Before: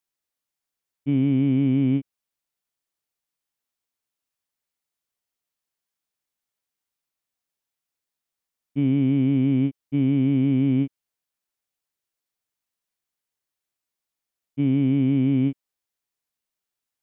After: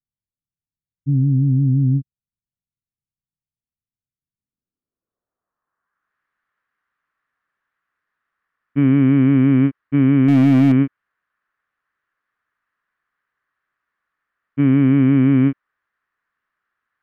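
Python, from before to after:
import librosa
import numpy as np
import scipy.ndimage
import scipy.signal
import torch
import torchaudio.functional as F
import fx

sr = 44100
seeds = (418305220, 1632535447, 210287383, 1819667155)

y = fx.filter_sweep_lowpass(x, sr, from_hz=140.0, to_hz=2000.0, start_s=4.18, end_s=6.18, q=1.4)
y = fx.band_shelf(y, sr, hz=1400.0, db=11.5, octaves=1.0)
y = fx.power_curve(y, sr, exponent=0.7, at=(10.28, 10.72))
y = F.gain(torch.from_numpy(y), 6.5).numpy()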